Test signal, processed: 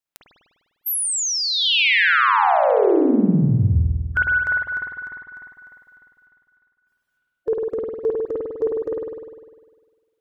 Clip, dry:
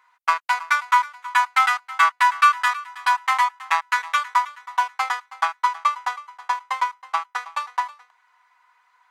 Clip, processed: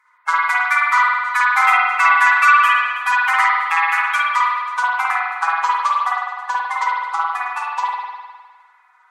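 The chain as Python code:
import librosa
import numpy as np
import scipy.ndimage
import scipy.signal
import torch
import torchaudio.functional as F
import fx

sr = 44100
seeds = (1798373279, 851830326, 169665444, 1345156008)

y = fx.spec_quant(x, sr, step_db=30)
y = fx.rev_spring(y, sr, rt60_s=1.5, pass_ms=(50,), chirp_ms=25, drr_db=-5.5)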